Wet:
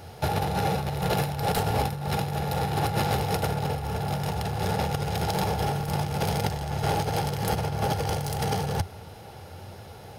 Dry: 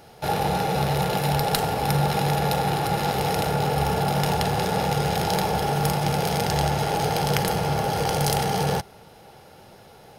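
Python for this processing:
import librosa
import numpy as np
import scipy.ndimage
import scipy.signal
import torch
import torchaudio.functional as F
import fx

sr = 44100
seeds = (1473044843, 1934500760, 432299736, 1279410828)

y = 10.0 ** (-16.5 / 20.0) * np.tanh(x / 10.0 ** (-16.5 / 20.0))
y = fx.peak_eq(y, sr, hz=90.0, db=15.0, octaves=0.61)
y = fx.over_compress(y, sr, threshold_db=-25.0, ratio=-0.5)
y = y * librosa.db_to_amplitude(-1.0)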